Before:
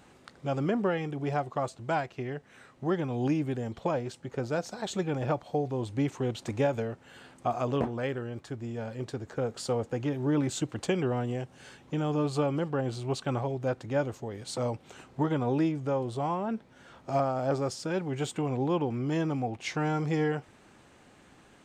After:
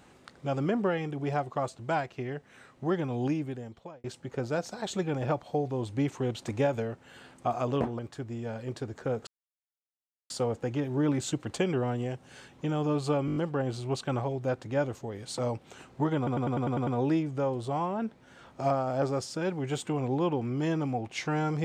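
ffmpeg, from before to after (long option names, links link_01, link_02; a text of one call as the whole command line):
ffmpeg -i in.wav -filter_complex "[0:a]asplit=16[link_01][link_02][link_03][link_04][link_05][link_06][link_07][link_08][link_09][link_10][link_11][link_12][link_13][link_14][link_15][link_16];[link_01]atrim=end=4.04,asetpts=PTS-STARTPTS,afade=type=out:start_time=3.14:duration=0.9[link_17];[link_02]atrim=start=4.04:end=7.992,asetpts=PTS-STARTPTS,afade=type=in:duration=0.004:curve=hsin[link_18];[link_03]atrim=start=8.308:end=9.59,asetpts=PTS-STARTPTS,afade=type=out:start_time=1.278:duration=0.004:curve=hsin,apad=pad_dur=1.03[link_19];[link_04]atrim=start=9.59:end=12.572,asetpts=PTS-STARTPTS,afade=type=in:duration=0.004:curve=hsin[link_20];[link_05]atrim=start=12.548:end=12.572[link_21];[link_06]atrim=start=12.548:end=12.572[link_22];[link_07]atrim=start=12.548:end=12.572[link_23];[link_08]atrim=start=12.548:end=12.572[link_24];[link_09]atrim=start=12.548:end=15.462[link_25];[link_10]atrim=start=15.358:end=15.462[link_26];[link_11]atrim=start=15.358:end=15.462[link_27];[link_12]atrim=start=15.358:end=15.462[link_28];[link_13]atrim=start=15.358:end=15.462[link_29];[link_14]atrim=start=15.358:end=15.462[link_30];[link_15]atrim=start=15.358:end=15.462[link_31];[link_16]atrim=start=15.358[link_32];[link_17][link_18]concat=n=2:v=0:a=1[link_33];[link_19][link_20]concat=n=2:v=0:a=1[link_34];[link_33][link_34]acrossfade=duration=0.004:curve1=hsin:curve2=hsin[link_35];[link_35][link_21]acrossfade=duration=0.004:curve1=hsin:curve2=hsin[link_36];[link_36][link_22]acrossfade=duration=0.004:curve1=hsin:curve2=hsin[link_37];[link_37][link_23]acrossfade=duration=0.004:curve1=hsin:curve2=hsin[link_38];[link_38][link_24]acrossfade=duration=0.004:curve1=hsin:curve2=hsin[link_39];[link_39][link_25]acrossfade=duration=0.004:curve1=hsin:curve2=hsin[link_40];[link_40][link_26]acrossfade=duration=0.004:curve1=hsin:curve2=hsin[link_41];[link_41][link_27]acrossfade=duration=0.004:curve1=hsin:curve2=hsin[link_42];[link_42][link_28]acrossfade=duration=0.004:curve1=hsin:curve2=hsin[link_43];[link_43][link_29]acrossfade=duration=0.004:curve1=hsin:curve2=hsin[link_44];[link_44][link_30]acrossfade=duration=0.004:curve1=hsin:curve2=hsin[link_45];[link_45][link_31]acrossfade=duration=0.004:curve1=hsin:curve2=hsin[link_46];[link_46][link_32]acrossfade=duration=0.004:curve1=hsin:curve2=hsin" out.wav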